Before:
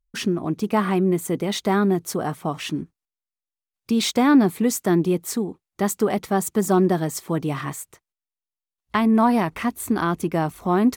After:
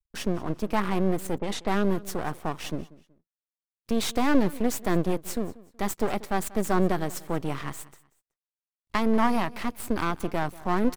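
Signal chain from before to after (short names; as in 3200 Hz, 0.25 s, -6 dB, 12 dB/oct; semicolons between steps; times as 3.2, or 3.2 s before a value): half-wave rectifier; feedback echo 0.187 s, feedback 30%, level -20.5 dB; 1.38–1.87 low-pass opened by the level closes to 620 Hz, open at -21.5 dBFS; gain -2 dB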